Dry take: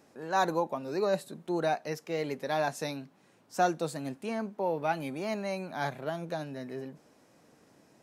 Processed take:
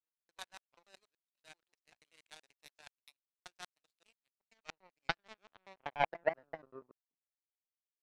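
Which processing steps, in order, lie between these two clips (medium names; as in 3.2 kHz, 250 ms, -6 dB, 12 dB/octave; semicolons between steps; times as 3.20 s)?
slices played last to first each 96 ms, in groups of 3; band-pass sweep 3 kHz -> 210 Hz, 4.42–7.60 s; power-law waveshaper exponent 3; trim +12.5 dB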